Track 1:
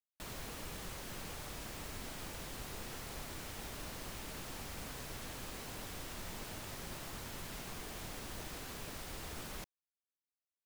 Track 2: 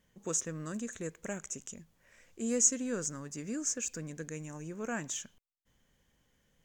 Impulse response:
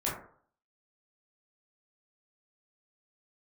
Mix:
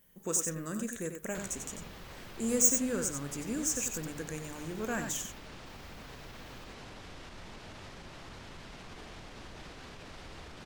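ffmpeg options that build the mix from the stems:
-filter_complex "[0:a]lowpass=4800,alimiter=level_in=17dB:limit=-24dB:level=0:latency=1:release=62,volume=-17dB,adelay=1150,volume=2.5dB[link_01];[1:a]bandreject=frequency=50:width_type=h:width=6,bandreject=frequency=100:width_type=h:width=6,bandreject=frequency=150:width_type=h:width=6,asoftclip=type=tanh:threshold=-17dB,aexciter=amount=5:drive=7:freq=9300,volume=0.5dB,asplit=3[link_02][link_03][link_04];[link_03]volume=-17dB[link_05];[link_04]volume=-6dB[link_06];[2:a]atrim=start_sample=2205[link_07];[link_05][link_07]afir=irnorm=-1:irlink=0[link_08];[link_06]aecho=0:1:93:1[link_09];[link_01][link_02][link_08][link_09]amix=inputs=4:normalize=0"

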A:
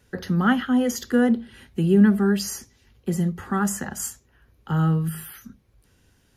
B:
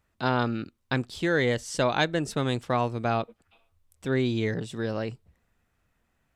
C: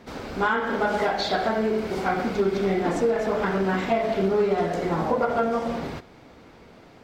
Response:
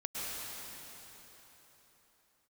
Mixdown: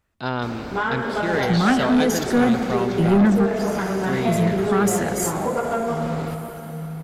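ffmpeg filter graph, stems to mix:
-filter_complex "[0:a]acontrast=30,adelay=1200,volume=-2dB,asplit=2[link_01][link_02];[link_02]volume=-15dB[link_03];[1:a]volume=-1dB,asplit=3[link_04][link_05][link_06];[link_05]volume=-13dB[link_07];[2:a]adelay=350,volume=-2dB,asplit=2[link_08][link_09];[link_09]volume=-9.5dB[link_10];[link_06]apad=whole_len=333828[link_11];[link_01][link_11]sidechaingate=range=-19dB:threshold=-56dB:ratio=16:detection=peak[link_12];[3:a]atrim=start_sample=2205[link_13];[link_03][link_07][link_10]amix=inputs=3:normalize=0[link_14];[link_14][link_13]afir=irnorm=-1:irlink=0[link_15];[link_12][link_04][link_08][link_15]amix=inputs=4:normalize=0,asoftclip=type=tanh:threshold=-11dB"

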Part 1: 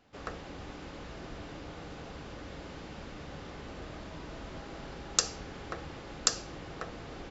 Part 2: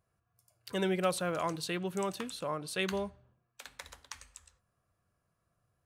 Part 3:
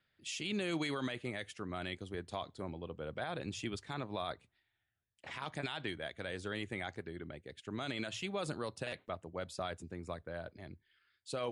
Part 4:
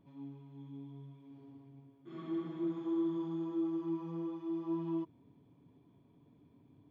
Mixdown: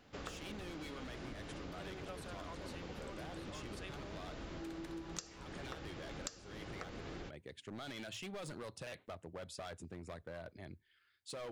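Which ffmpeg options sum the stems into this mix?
ffmpeg -i stem1.wav -i stem2.wav -i stem3.wav -i stem4.wav -filter_complex "[0:a]equalizer=frequency=830:width=1.5:gain=-3,volume=2.5dB[link_01];[1:a]highpass=370,adelay=1050,volume=-2.5dB[link_02];[2:a]asoftclip=type=hard:threshold=-38.5dB,volume=-0.5dB,asplit=2[link_03][link_04];[3:a]aeval=exprs='val(0)*pow(10,-29*(0.5-0.5*cos(2*PI*0.51*n/s))/20)':channel_layout=same,adelay=1050,volume=1.5dB[link_05];[link_04]apad=whole_len=304338[link_06];[link_02][link_06]sidechaincompress=threshold=-50dB:ratio=8:attack=16:release=550[link_07];[link_01][link_07][link_03][link_05]amix=inputs=4:normalize=0,acompressor=threshold=-43dB:ratio=8" out.wav

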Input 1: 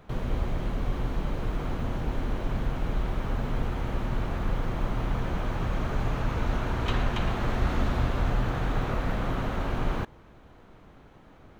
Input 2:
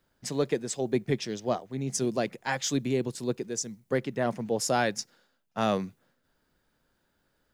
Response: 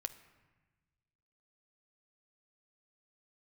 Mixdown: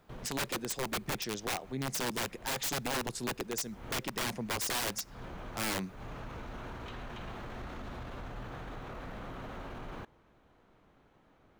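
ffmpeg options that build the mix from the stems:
-filter_complex "[0:a]lowshelf=frequency=150:gain=-6.5,alimiter=level_in=1dB:limit=-24dB:level=0:latency=1:release=17,volume=-1dB,volume=-10dB[link_01];[1:a]lowshelf=frequency=350:gain=-4,aeval=exprs='(mod(20*val(0)+1,2)-1)/20':channel_layout=same,volume=0dB,asplit=3[link_02][link_03][link_04];[link_03]volume=-14.5dB[link_05];[link_04]apad=whole_len=511221[link_06];[link_01][link_06]sidechaincompress=threshold=-50dB:ratio=8:attack=16:release=166[link_07];[2:a]atrim=start_sample=2205[link_08];[link_05][link_08]afir=irnorm=-1:irlink=0[link_09];[link_07][link_02][link_09]amix=inputs=3:normalize=0,alimiter=level_in=3.5dB:limit=-24dB:level=0:latency=1:release=95,volume=-3.5dB"

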